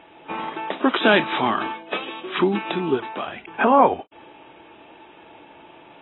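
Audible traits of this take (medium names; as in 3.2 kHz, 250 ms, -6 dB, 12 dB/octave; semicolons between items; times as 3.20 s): a quantiser's noise floor 10-bit, dither none; AAC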